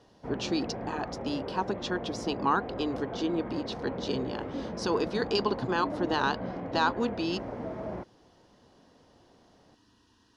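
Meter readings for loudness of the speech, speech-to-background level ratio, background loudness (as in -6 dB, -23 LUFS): -32.0 LUFS, 5.5 dB, -37.5 LUFS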